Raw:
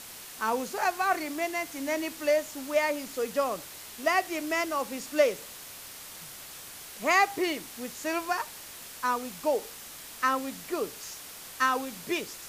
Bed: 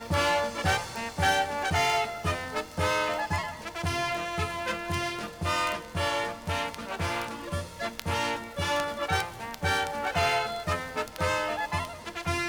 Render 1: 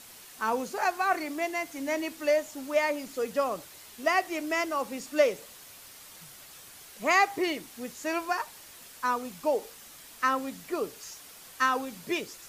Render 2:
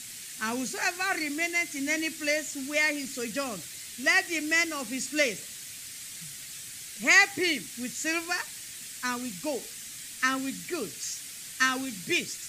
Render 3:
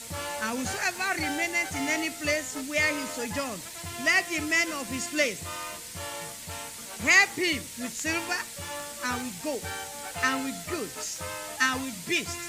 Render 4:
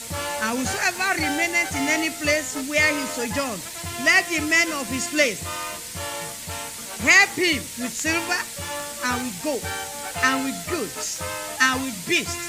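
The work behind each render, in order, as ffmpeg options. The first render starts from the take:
-af "afftdn=nr=6:nf=-45"
-af "equalizer=f=125:t=o:w=1:g=8,equalizer=f=250:t=o:w=1:g=4,equalizer=f=500:t=o:w=1:g=-6,equalizer=f=1k:t=o:w=1:g=-10,equalizer=f=2k:t=o:w=1:g=8,equalizer=f=4k:t=o:w=1:g=4,equalizer=f=8k:t=o:w=1:g=11"
-filter_complex "[1:a]volume=-10dB[a];[0:a][a]amix=inputs=2:normalize=0"
-af "volume=6dB,alimiter=limit=-3dB:level=0:latency=1"

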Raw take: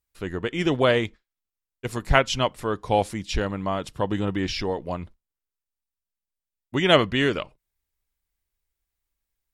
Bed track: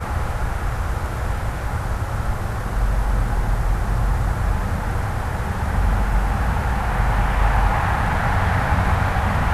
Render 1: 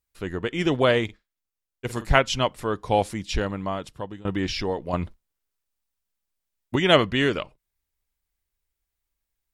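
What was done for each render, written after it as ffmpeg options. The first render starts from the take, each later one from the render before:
-filter_complex "[0:a]asettb=1/sr,asplit=3[a][b][c];[a]atrim=end=1.044[d];[b]atrim=start=1.04:end=2.12,asetpts=PTS-STARTPTS,afade=t=in:d=0.004:c=qsin,afade=t=out:st=1.076:d=0.004:c=qsin,asplit=2[e][f];[f]adelay=48,volume=-13.5dB[g];[e][g]amix=inputs=2:normalize=0,atrim=end_sample=47628[h];[c]atrim=start=2.116[i];[d][h]acrossfade=d=0.004:c1=hsin:c2=qsin[j];[j][i]acrossfade=d=0.004:c1=qsin:c2=hsin,asettb=1/sr,asplit=3[k][l][m];[k]atrim=end=4.934[n];[l]atrim=start=4.93:end=6.76,asetpts=PTS-STARTPTS,afade=t=in:d=0.004:c=qsin,afade=t=out:st=1.826:d=0.004:c=qsin,acontrast=67[o];[m]atrim=start=6.756[p];[n][o]acrossfade=d=0.004:c1=hsin:c2=qsin[q];[q][p]acrossfade=d=0.004:c1=qsin:c2=hsin,asplit=2[r][s];[r]atrim=end=4.25,asetpts=PTS-STARTPTS,afade=t=out:st=3.28:d=0.97:c=qsin:silence=0.0707946[t];[s]atrim=start=4.25,asetpts=PTS-STARTPTS,afade=t=in:d=0.004:c=hsin:silence=0.0707946[u];[t][u]concat=n=2:v=0:a=1"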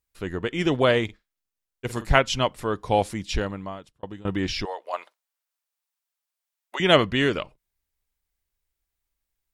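-filter_complex "[0:a]asettb=1/sr,asplit=3[a][b][c];[a]atrim=end=4.654[d];[b]atrim=start=4.65:end=6.8,asetpts=PTS-STARTPTS,afade=t=in:d=0.004:c=qsin,afade=t=out:st=2.146:d=0.004:c=qsin,highpass=f=600:w=0.5412,highpass=f=600:w=1.3066[e];[c]atrim=start=6.796[f];[d][e]acrossfade=d=0.004:c1=hsin:c2=qsin[g];[g][f]acrossfade=d=0.004:c1=qsin:c2=hsin,asplit=2[h][i];[h]atrim=end=4.03,asetpts=PTS-STARTPTS,afade=t=out:st=3.35:d=0.68[j];[i]atrim=start=4.03,asetpts=PTS-STARTPTS,afade=t=in:d=0.004:c=hsin[k];[j][k]concat=n=2:v=0:a=1"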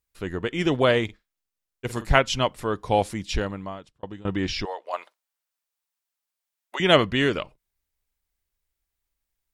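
-filter_complex "[0:a]asettb=1/sr,asplit=3[a][b][c];[a]atrim=end=3.734[d];[b]atrim=start=3.73:end=4.91,asetpts=PTS-STARTPTS,afade=t=in:d=0.004:c=qsin,afade=t=out:st=1.176:d=0.004:c=qsin,lowpass=8.4k[e];[c]atrim=start=4.906[f];[d][e]acrossfade=d=0.004:c1=hsin:c2=qsin[g];[g][f]acrossfade=d=0.004:c1=qsin:c2=hsin"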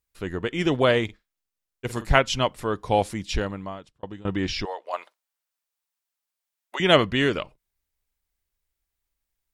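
-af anull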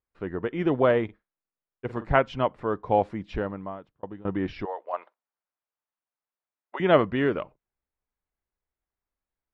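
-af "lowpass=1.4k,lowshelf=f=91:g=-11"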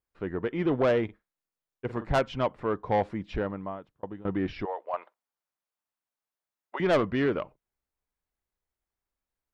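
-af "asoftclip=type=tanh:threshold=-17.5dB"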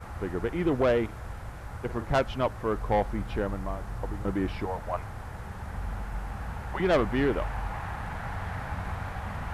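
-filter_complex "[1:a]volume=-15.5dB[a];[0:a][a]amix=inputs=2:normalize=0"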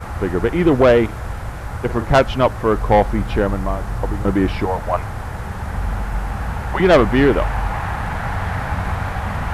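-af "volume=12dB"

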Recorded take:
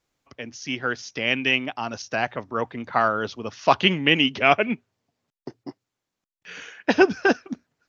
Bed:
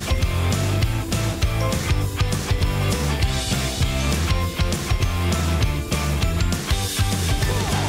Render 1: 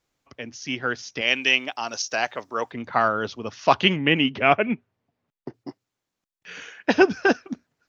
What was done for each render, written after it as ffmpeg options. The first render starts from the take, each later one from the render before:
-filter_complex "[0:a]asettb=1/sr,asplit=3[a][b][c];[a]atrim=end=1.214[d];[b]atrim=start=1.21:end=2.72,asetpts=PTS-STARTPTS,afade=t=in:d=0.004:c=qsin,afade=t=out:st=1.506:d=0.004:c=qsin,bass=f=250:g=-13,treble=f=4k:g=12[e];[c]atrim=start=2.716[f];[d][e]acrossfade=d=0.004:c1=hsin:c2=qsin[g];[g][f]acrossfade=d=0.004:c1=qsin:c2=hsin,asettb=1/sr,asplit=3[h][i][j];[h]atrim=end=3.964[k];[i]atrim=start=3.96:end=5.54,asetpts=PTS-STARTPTS,afade=t=in:d=0.004:c=qsin,afade=t=out:st=1.576:d=0.004:c=qsin,bass=f=250:g=2,treble=f=4k:g=-14[l];[j]atrim=start=5.536[m];[k][l]acrossfade=d=0.004:c1=hsin:c2=qsin[n];[n][m]acrossfade=d=0.004:c1=qsin:c2=hsin"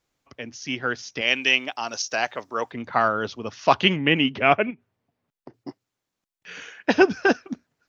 -filter_complex "[0:a]asplit=3[a][b][c];[a]afade=t=out:st=4.69:d=0.02[d];[b]acompressor=threshold=-36dB:ratio=8:attack=3.2:release=140:knee=1:detection=peak,afade=t=in:st=4.69:d=0.02,afade=t=out:st=5.6:d=0.02[e];[c]afade=t=in:st=5.6:d=0.02[f];[d][e][f]amix=inputs=3:normalize=0"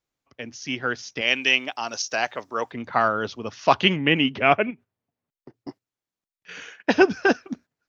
-af "agate=range=-9dB:threshold=-43dB:ratio=16:detection=peak"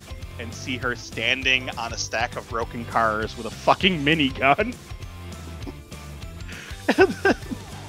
-filter_complex "[1:a]volume=-16dB[a];[0:a][a]amix=inputs=2:normalize=0"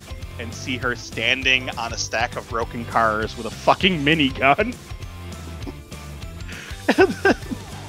-af "volume=2.5dB,alimiter=limit=-2dB:level=0:latency=1"

